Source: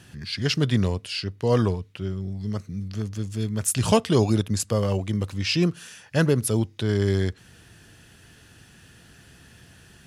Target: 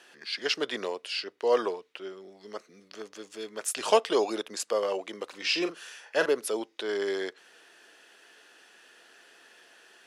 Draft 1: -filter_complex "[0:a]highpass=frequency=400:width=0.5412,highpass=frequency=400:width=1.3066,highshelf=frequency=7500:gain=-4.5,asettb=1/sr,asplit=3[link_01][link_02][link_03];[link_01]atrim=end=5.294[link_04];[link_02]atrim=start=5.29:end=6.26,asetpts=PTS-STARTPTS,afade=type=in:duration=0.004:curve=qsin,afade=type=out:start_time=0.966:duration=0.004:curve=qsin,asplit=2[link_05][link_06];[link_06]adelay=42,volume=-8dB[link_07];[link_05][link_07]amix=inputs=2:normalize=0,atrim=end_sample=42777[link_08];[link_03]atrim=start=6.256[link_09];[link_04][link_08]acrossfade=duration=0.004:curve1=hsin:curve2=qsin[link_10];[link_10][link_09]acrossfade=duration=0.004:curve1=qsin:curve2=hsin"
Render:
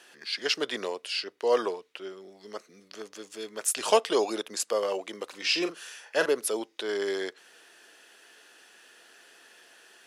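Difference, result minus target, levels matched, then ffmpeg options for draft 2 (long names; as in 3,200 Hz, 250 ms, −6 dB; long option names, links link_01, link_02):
8,000 Hz band +3.5 dB
-filter_complex "[0:a]highpass=frequency=400:width=0.5412,highpass=frequency=400:width=1.3066,highshelf=frequency=7500:gain=-12,asettb=1/sr,asplit=3[link_01][link_02][link_03];[link_01]atrim=end=5.294[link_04];[link_02]atrim=start=5.29:end=6.26,asetpts=PTS-STARTPTS,afade=type=in:duration=0.004:curve=qsin,afade=type=out:start_time=0.966:duration=0.004:curve=qsin,asplit=2[link_05][link_06];[link_06]adelay=42,volume=-8dB[link_07];[link_05][link_07]amix=inputs=2:normalize=0,atrim=end_sample=42777[link_08];[link_03]atrim=start=6.256[link_09];[link_04][link_08]acrossfade=duration=0.004:curve1=hsin:curve2=qsin[link_10];[link_10][link_09]acrossfade=duration=0.004:curve1=qsin:curve2=hsin"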